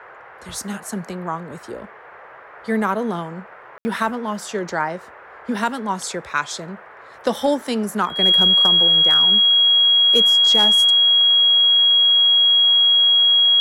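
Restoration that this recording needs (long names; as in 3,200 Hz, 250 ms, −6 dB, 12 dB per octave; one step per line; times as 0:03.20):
clipped peaks rebuilt −8.5 dBFS
notch filter 3,300 Hz, Q 30
ambience match 0:03.78–0:03.85
noise reduction from a noise print 22 dB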